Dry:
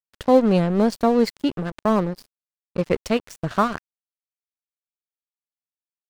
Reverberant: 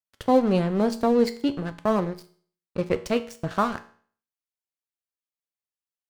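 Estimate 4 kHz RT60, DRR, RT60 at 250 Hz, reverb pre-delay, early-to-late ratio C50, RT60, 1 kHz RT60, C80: 0.50 s, 9.5 dB, 0.50 s, 4 ms, 15.5 dB, 0.50 s, 0.50 s, 19.0 dB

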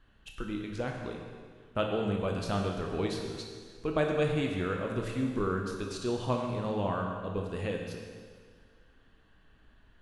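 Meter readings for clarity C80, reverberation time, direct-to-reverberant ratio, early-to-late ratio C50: 4.0 dB, 1.8 s, 1.0 dB, 3.0 dB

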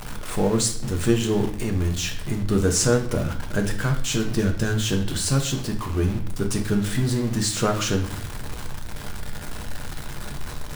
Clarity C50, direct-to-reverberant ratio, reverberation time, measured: 9.5 dB, 3.0 dB, 0.55 s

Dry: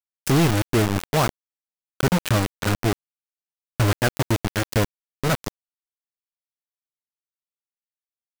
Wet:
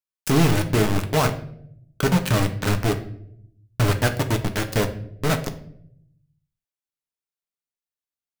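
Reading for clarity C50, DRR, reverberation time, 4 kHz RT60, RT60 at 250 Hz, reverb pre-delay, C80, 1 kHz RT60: 12.5 dB, 5.5 dB, 0.70 s, 0.45 s, 1.1 s, 5 ms, 15.5 dB, 0.55 s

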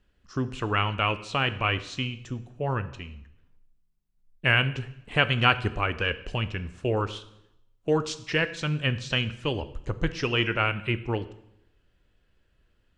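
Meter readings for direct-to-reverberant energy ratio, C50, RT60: 12.0 dB, 15.0 dB, 0.80 s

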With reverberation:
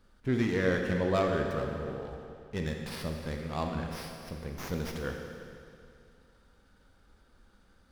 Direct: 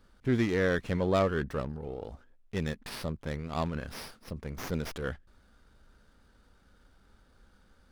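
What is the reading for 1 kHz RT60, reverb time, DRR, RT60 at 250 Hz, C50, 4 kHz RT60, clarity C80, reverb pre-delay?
2.4 s, 2.4 s, 2.0 dB, 2.4 s, 3.5 dB, 2.3 s, 4.5 dB, 21 ms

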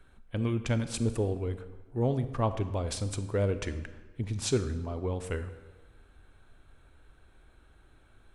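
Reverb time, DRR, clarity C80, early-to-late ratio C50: 1.3 s, 10.5 dB, 13.5 dB, 11.5 dB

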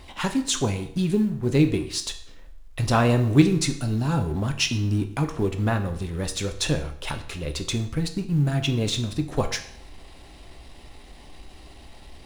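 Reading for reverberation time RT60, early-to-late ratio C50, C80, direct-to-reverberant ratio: 0.60 s, 11.5 dB, 14.5 dB, 6.0 dB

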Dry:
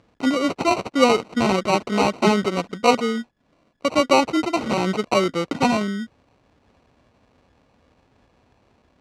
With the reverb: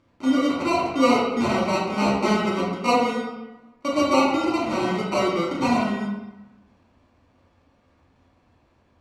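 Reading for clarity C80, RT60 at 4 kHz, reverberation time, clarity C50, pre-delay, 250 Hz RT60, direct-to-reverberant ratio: 4.0 dB, 0.70 s, 1.0 s, 1.0 dB, 3 ms, 1.2 s, −6.5 dB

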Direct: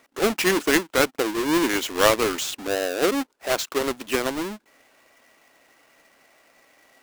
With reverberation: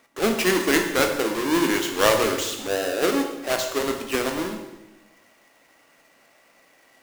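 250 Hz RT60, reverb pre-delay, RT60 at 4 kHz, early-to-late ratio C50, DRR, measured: 1.3 s, 16 ms, 0.95 s, 6.5 dB, 3.5 dB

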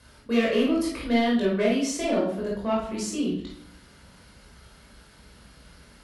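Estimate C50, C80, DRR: 3.0 dB, 7.5 dB, −5.0 dB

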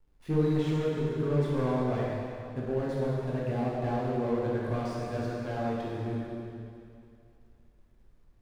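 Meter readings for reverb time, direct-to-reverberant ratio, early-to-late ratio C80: 2.6 s, −6.0 dB, −1.0 dB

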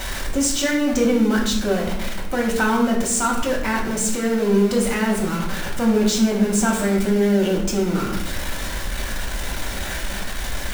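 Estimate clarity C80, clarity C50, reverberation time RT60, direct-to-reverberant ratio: 8.0 dB, 5.5 dB, 0.80 s, −2.0 dB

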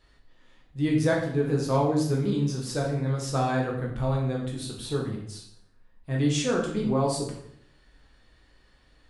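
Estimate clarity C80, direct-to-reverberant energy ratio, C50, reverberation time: 8.0 dB, −2.0 dB, 4.5 dB, 0.70 s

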